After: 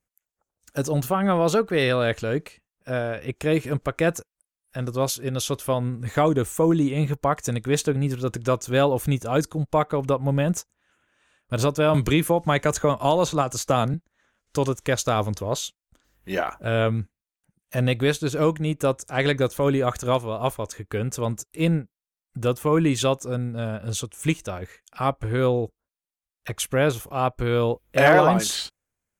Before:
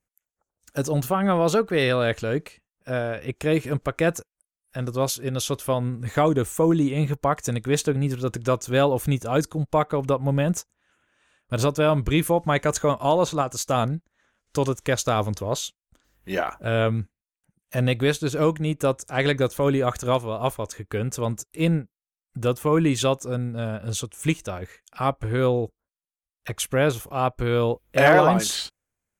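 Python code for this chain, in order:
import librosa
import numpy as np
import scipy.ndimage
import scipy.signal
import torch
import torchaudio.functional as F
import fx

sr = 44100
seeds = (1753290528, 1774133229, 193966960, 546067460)

y = fx.band_squash(x, sr, depth_pct=70, at=(11.94, 13.94))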